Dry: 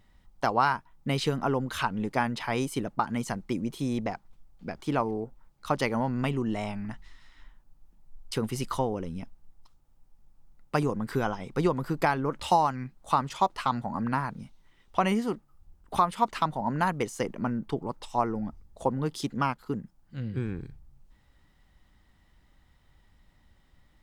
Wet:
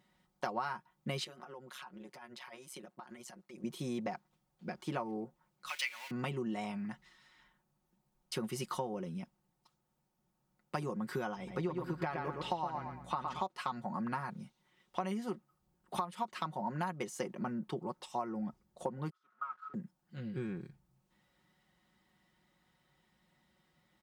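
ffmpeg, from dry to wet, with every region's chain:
-filter_complex "[0:a]asettb=1/sr,asplit=3[a][b][c];[a]atrim=end=1.244[d];[b]atrim=start=1.24:end=3.64,asetpts=PTS-STARTPTS,afade=t=in:d=0.004:c=qsin,afade=t=out:st=2.396:d=0.004:c=qsin,highpass=f=500:p=1,acompressor=threshold=-37dB:ratio=6:attack=3.2:release=140:knee=1:detection=peak,tremolo=f=130:d=0.889[e];[c]atrim=start=3.636[f];[d][e]acrossfade=d=0.004:c1=hsin:c2=qsin[g];[g][f]acrossfade=d=0.004:c1=qsin:c2=hsin,asettb=1/sr,asplit=3[h][i][j];[h]atrim=end=5.694[k];[i]atrim=start=5.69:end=6.11,asetpts=PTS-STARTPTS,afade=t=in:d=0.004:c=qsin,afade=t=out:st=0.416:d=0.004:c=qsin,aeval=exprs='val(0)+0.5*0.0178*sgn(val(0))':c=same,highpass=f=2.4k:t=q:w=2.9[l];[j]atrim=start=6.106[m];[k][l]acrossfade=d=0.004:c1=hsin:c2=qsin[n];[n][m]acrossfade=d=0.004:c1=qsin:c2=hsin,asettb=1/sr,asplit=3[o][p][q];[o]atrim=end=11.364[r];[p]atrim=start=11.36:end=13.42,asetpts=PTS-STARTPTS,afade=t=in:d=0.004:c=qsin,afade=t=out:st=2.056:d=0.004:c=qsin,acrossover=split=4600[s][t];[t]acompressor=threshold=-59dB:ratio=4:attack=1:release=60[u];[s][u]amix=inputs=2:normalize=0,aeval=exprs='val(0)+0.00794*(sin(2*PI*60*n/s)+sin(2*PI*2*60*n/s)/2+sin(2*PI*3*60*n/s)/3+sin(2*PI*4*60*n/s)/4+sin(2*PI*5*60*n/s)/5)':c=same,asplit=2[v][w];[w]adelay=115,lowpass=f=4.5k:p=1,volume=-5dB,asplit=2[x][y];[y]adelay=115,lowpass=f=4.5k:p=1,volume=0.31,asplit=2[z][aa];[aa]adelay=115,lowpass=f=4.5k:p=1,volume=0.31,asplit=2[ab][ac];[ac]adelay=115,lowpass=f=4.5k:p=1,volume=0.31[ad];[v][x][z][ab][ad]amix=inputs=5:normalize=0,atrim=end_sample=90846[ae];[q]atrim=start=13.416[af];[r][ae]acrossfade=d=0.004:c1=hsin:c2=qsin[ag];[ag][af]acrossfade=d=0.004:c1=qsin:c2=hsin,asettb=1/sr,asplit=3[ah][ai][aj];[ah]atrim=end=19.104[ak];[ai]atrim=start=19.1:end=19.74,asetpts=PTS-STARTPTS,afade=t=in:d=0.004:c=qsin,afade=t=out:st=0.636:d=0.004:c=qsin,aeval=exprs='val(0)+0.5*0.0299*sgn(val(0))':c=same,bandpass=f=1.3k:t=q:w=16,agate=range=-33dB:threshold=-51dB:ratio=3:release=100:detection=peak[al];[aj]atrim=start=19.736[am];[ak][al]acrossfade=d=0.004:c1=hsin:c2=qsin[an];[an][am]acrossfade=d=0.004:c1=qsin:c2=hsin,highpass=140,aecho=1:1:5.5:0.66,acompressor=threshold=-27dB:ratio=6,volume=-6dB"

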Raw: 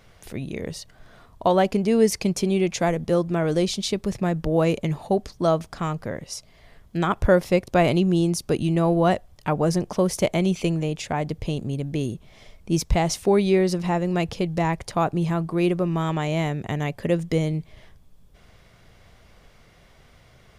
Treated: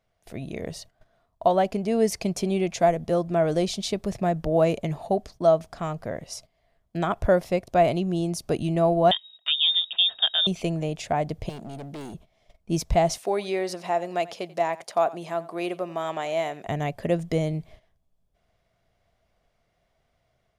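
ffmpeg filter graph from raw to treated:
-filter_complex "[0:a]asettb=1/sr,asplit=3[a][b][c];[a]atrim=end=9.114[d];[b]atrim=start=9.11:end=10.47,asetpts=PTS-STARTPTS,afade=t=in:d=0.004:c=qsin,afade=t=out:st=1.356:d=0.004:c=qsin,bandreject=f=1.6k:w=6.1,lowpass=f=3.2k:t=q:w=0.5098,lowpass=f=3.2k:t=q:w=0.6013,lowpass=f=3.2k:t=q:w=0.9,lowpass=f=3.2k:t=q:w=2.563,afreqshift=-3800,aemphasis=mode=production:type=50kf[e];[c]atrim=start=10.466[f];[d][e]acrossfade=d=0.004:c1=hsin:c2=qsin[g];[g][f]acrossfade=d=0.004:c1=qsin:c2=hsin,asettb=1/sr,asplit=3[h][i][j];[h]atrim=end=11.494[k];[i]atrim=start=11.49:end=12.14,asetpts=PTS-STARTPTS,afade=t=in:d=0.004:c=qsin,afade=t=out:st=0.646:d=0.004:c=qsin,highpass=170,asoftclip=type=hard:threshold=-32.5dB[l];[j]atrim=start=12.136[m];[k][l]acrossfade=d=0.004:c1=hsin:c2=qsin[n];[n][m]acrossfade=d=0.004:c1=qsin:c2=hsin,asettb=1/sr,asplit=3[o][p][q];[o]atrim=end=13.184[r];[p]atrim=start=13.18:end=16.67,asetpts=PTS-STARTPTS,afade=t=in:d=0.004:c=qsin,afade=t=out:st=3.486:d=0.004:c=qsin,highpass=260,lowshelf=f=360:g=-9,aecho=1:1:88:0.112,atrim=end_sample=153909[s];[q]atrim=start=16.666[t];[r][s]acrossfade=d=0.004:c1=hsin:c2=qsin[u];[u][t]acrossfade=d=0.004:c1=qsin:c2=hsin,agate=range=-16dB:threshold=-42dB:ratio=16:detection=peak,equalizer=f=670:t=o:w=0.34:g=10.5,dynaudnorm=f=230:g=3:m=3.5dB,volume=-6.5dB"

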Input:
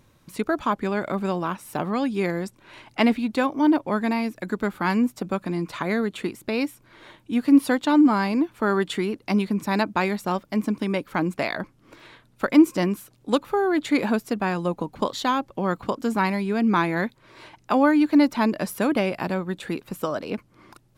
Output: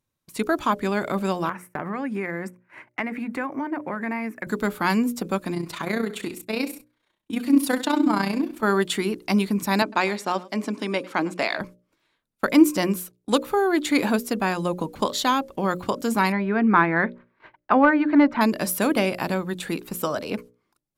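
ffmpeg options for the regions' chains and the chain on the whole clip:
-filter_complex "[0:a]asettb=1/sr,asplit=3[a][b][c];[a]atrim=end=1.494[d];[b]atrim=start=1.49:end=4.47,asetpts=PTS-STARTPTS,afade=t=in:d=0.004:c=qsin,afade=t=out:st=2.976:d=0.004:c=qsin,highpass=f=96:w=0.5412,highpass=f=96:w=1.3066,highshelf=f=2.7k:t=q:w=3:g=-11,acompressor=threshold=-25dB:ratio=6:attack=3.2:release=140:knee=1:detection=peak[e];[c]atrim=start=4.466[f];[d][e]acrossfade=d=0.004:c1=hsin:c2=qsin[g];[g][f]acrossfade=d=0.004:c1=qsin:c2=hsin,asettb=1/sr,asplit=3[h][i][j];[h]atrim=end=5.544[k];[i]atrim=start=5.54:end=8.63,asetpts=PTS-STARTPTS,afade=t=in:d=0.004:c=qsin,afade=t=out:st=3.086:d=0.004:c=qsin,tremolo=f=30:d=0.667,aecho=1:1:66|132|198|264:0.224|0.0873|0.0341|0.0133,atrim=end_sample=136269[l];[j]atrim=start=8.626[m];[k][l]acrossfade=d=0.004:c1=hsin:c2=qsin[n];[n][m]acrossfade=d=0.004:c1=qsin:c2=hsin,asettb=1/sr,asplit=3[o][p][q];[o]atrim=end=9.824[r];[p]atrim=start=9.82:end=11.61,asetpts=PTS-STARTPTS,afade=t=in:d=0.004:c=qsin,afade=t=out:st=1.786:d=0.004:c=qsin,highpass=250,lowpass=7.3k,aecho=1:1:102:0.0944,atrim=end_sample=78939[s];[q]atrim=start=11.606[t];[r][s]acrossfade=d=0.004:c1=hsin:c2=qsin[u];[u][t]acrossfade=d=0.004:c1=qsin:c2=hsin,asettb=1/sr,asplit=3[v][w][x];[v]atrim=end=16.324[y];[w]atrim=start=16.32:end=18.41,asetpts=PTS-STARTPTS,afade=t=in:d=0.004:c=qsin,afade=t=out:st=2.086:d=0.004:c=qsin,asoftclip=type=hard:threshold=-10.5dB,lowpass=f=1.7k:t=q:w=1.7[z];[x]atrim=start=18.406[aa];[y][z]acrossfade=d=0.004:c1=hsin:c2=qsin[ab];[ab][aa]acrossfade=d=0.004:c1=qsin:c2=hsin,agate=range=-25dB:threshold=-42dB:ratio=16:detection=peak,aemphasis=mode=production:type=cd,bandreject=f=60:t=h:w=6,bandreject=f=120:t=h:w=6,bandreject=f=180:t=h:w=6,bandreject=f=240:t=h:w=6,bandreject=f=300:t=h:w=6,bandreject=f=360:t=h:w=6,bandreject=f=420:t=h:w=6,bandreject=f=480:t=h:w=6,bandreject=f=540:t=h:w=6,bandreject=f=600:t=h:w=6,volume=1.5dB"

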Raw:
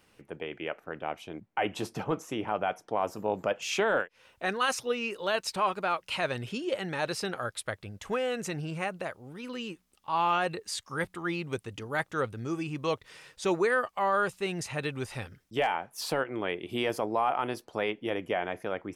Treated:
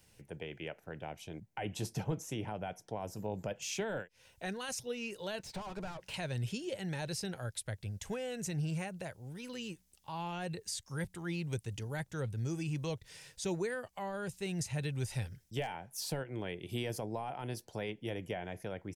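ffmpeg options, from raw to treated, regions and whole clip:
-filter_complex "[0:a]asettb=1/sr,asplit=3[a][b][c];[a]atrim=end=5.394[d];[b]atrim=start=5.39:end=6.14,asetpts=PTS-STARTPTS,afade=t=in:d=0.004:c=qsin,afade=t=out:st=0.746:d=0.004:c=qsin,acompressor=threshold=-39dB:ratio=2:attack=3.2:release=140:knee=1:detection=peak,asplit=2[e][f];[f]highpass=f=720:p=1,volume=24dB,asoftclip=type=tanh:threshold=-25.5dB[g];[e][g]amix=inputs=2:normalize=0,lowpass=f=1k:p=1,volume=-6dB[h];[c]atrim=start=6.136[i];[d][h]acrossfade=d=0.004:c1=hsin:c2=qsin[j];[j][i]acrossfade=d=0.004:c1=qsin:c2=hsin,firequalizer=gain_entry='entry(130,0);entry(260,-11);entry(490,-9);entry(2700,-8);entry(6000,0)':delay=0.05:min_phase=1,acrossover=split=340[k][l];[l]acompressor=threshold=-46dB:ratio=2[m];[k][m]amix=inputs=2:normalize=0,equalizer=f=1.2k:t=o:w=0.3:g=-12,volume=4dB"

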